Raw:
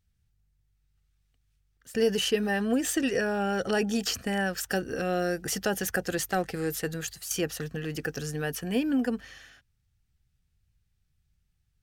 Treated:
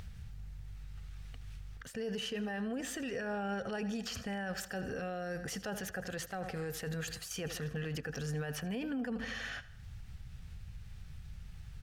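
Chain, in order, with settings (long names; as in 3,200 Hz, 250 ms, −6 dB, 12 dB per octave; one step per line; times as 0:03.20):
in parallel at 0 dB: upward compression, threshold −29 dBFS
on the sum: parametric band 330 Hz −10 dB 0.48 octaves
repeating echo 80 ms, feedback 53%, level −18 dB
reversed playback
downward compressor 10 to 1, threshold −31 dBFS, peak gain reduction 16 dB
reversed playback
low-pass filter 2,900 Hz 6 dB per octave
brickwall limiter −32 dBFS, peak gain reduction 9.5 dB
level +1.5 dB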